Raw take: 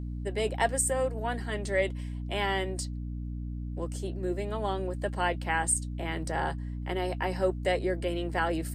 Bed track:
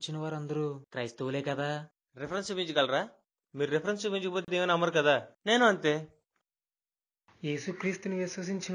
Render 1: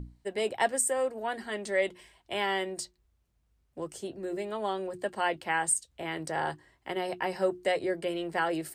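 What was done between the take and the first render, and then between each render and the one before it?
notches 60/120/180/240/300/360 Hz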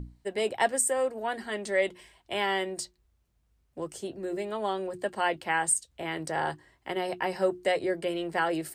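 gain +1.5 dB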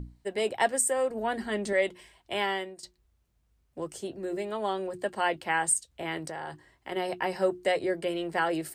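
1.1–1.73 low shelf 270 Hz +11 dB; 2.42–2.83 fade out, to -17 dB; 6.18–6.92 compressor, threshold -33 dBFS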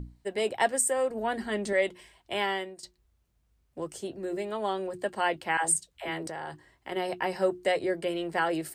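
5.57–6.27 dispersion lows, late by 78 ms, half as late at 440 Hz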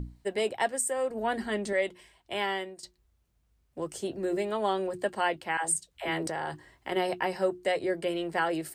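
vocal rider within 4 dB 0.5 s

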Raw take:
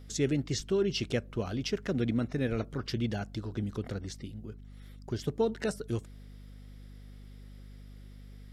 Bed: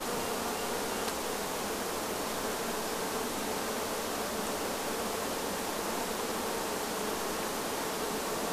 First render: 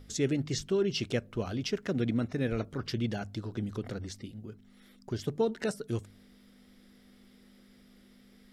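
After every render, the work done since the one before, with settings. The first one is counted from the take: de-hum 50 Hz, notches 3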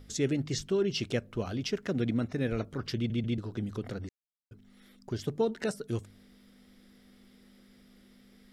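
2.96 stutter in place 0.14 s, 3 plays; 4.09–4.51 mute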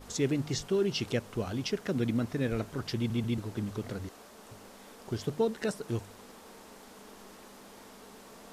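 add bed -18 dB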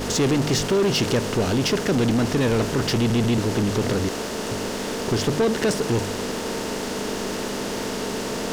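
per-bin compression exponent 0.6; sample leveller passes 3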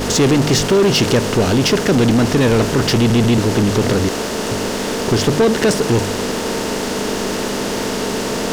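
gain +7 dB

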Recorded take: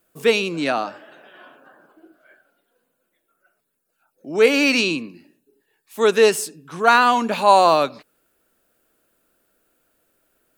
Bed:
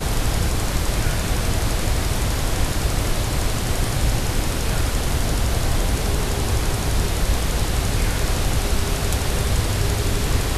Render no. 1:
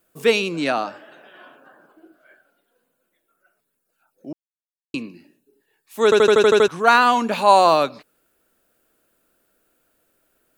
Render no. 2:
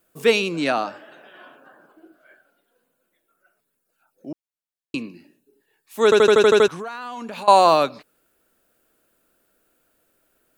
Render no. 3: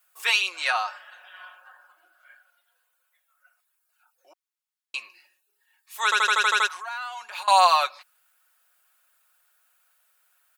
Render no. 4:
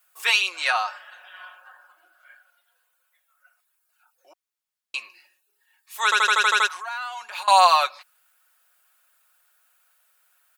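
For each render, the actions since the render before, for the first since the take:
4.33–4.94 mute; 6.04 stutter in place 0.08 s, 8 plays
6.7–7.48 compressor 10:1, threshold -29 dBFS
HPF 890 Hz 24 dB/oct; comb 5.5 ms, depth 69%
gain +2 dB

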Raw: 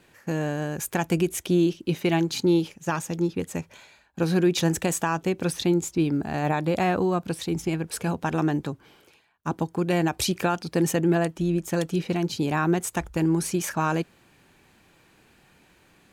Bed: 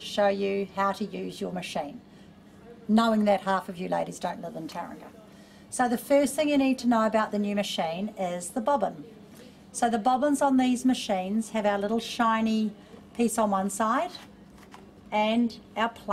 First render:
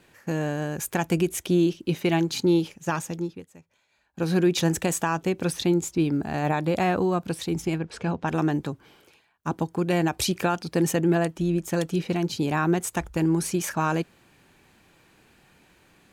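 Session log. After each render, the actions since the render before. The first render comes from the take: 3–4.35 dip -19.5 dB, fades 0.47 s; 7.78–8.28 air absorption 120 m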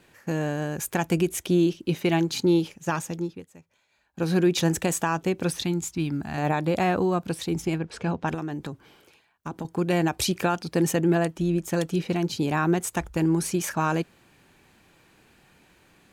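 5.64–6.38 bell 460 Hz -11.5 dB 1.1 oct; 8.34–9.65 compressor 4:1, threshold -29 dBFS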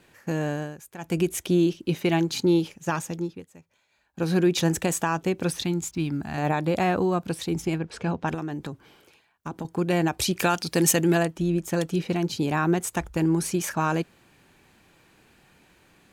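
0.54–1.22 dip -15.5 dB, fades 0.25 s; 5.61–6.11 backlash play -55.5 dBFS; 10.39–11.23 high shelf 2300 Hz +11 dB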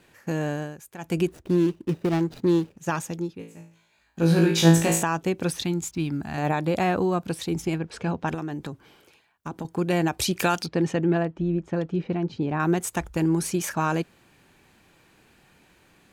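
1.27–2.78 median filter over 41 samples; 3.38–5.03 flutter echo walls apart 3.1 m, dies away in 0.44 s; 10.66–12.6 tape spacing loss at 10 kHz 32 dB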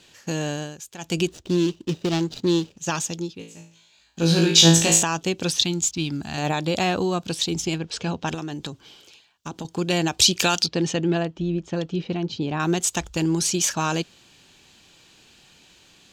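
band shelf 4600 Hz +12.5 dB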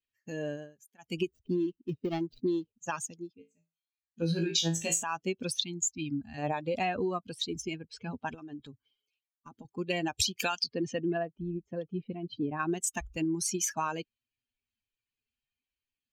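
per-bin expansion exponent 2; compressor 12:1, threshold -26 dBFS, peak gain reduction 15 dB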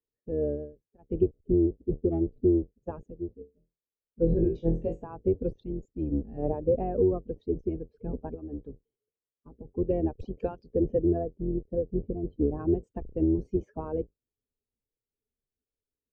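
octaver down 2 oct, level +2 dB; synth low-pass 460 Hz, resonance Q 3.8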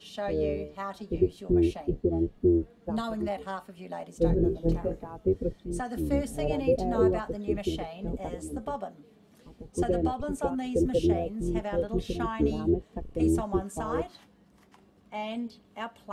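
add bed -10 dB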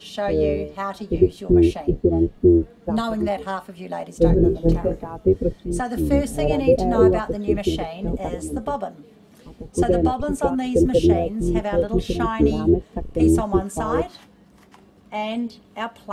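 gain +8.5 dB

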